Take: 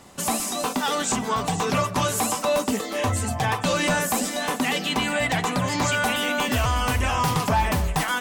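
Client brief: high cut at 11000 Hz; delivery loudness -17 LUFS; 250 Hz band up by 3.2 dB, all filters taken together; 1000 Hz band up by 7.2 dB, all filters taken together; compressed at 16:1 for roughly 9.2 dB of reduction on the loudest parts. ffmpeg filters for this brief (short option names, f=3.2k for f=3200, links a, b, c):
-af "lowpass=11k,equalizer=f=250:t=o:g=3.5,equalizer=f=1k:t=o:g=8.5,acompressor=threshold=-20dB:ratio=16,volume=7.5dB"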